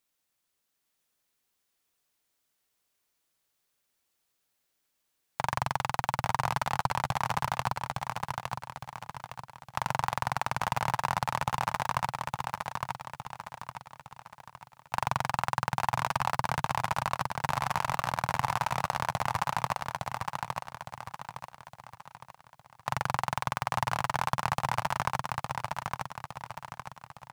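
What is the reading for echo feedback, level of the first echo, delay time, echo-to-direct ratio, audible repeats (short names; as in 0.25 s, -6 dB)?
44%, -3.5 dB, 0.861 s, -2.5 dB, 5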